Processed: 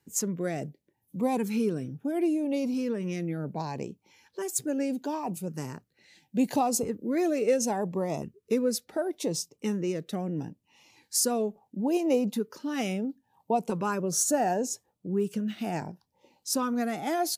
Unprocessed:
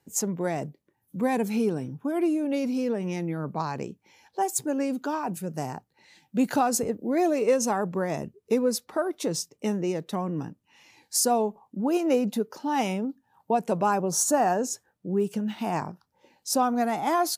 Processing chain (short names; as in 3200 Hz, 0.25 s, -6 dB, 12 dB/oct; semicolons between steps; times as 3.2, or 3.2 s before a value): LFO notch saw up 0.73 Hz 630–1800 Hz; gain -1.5 dB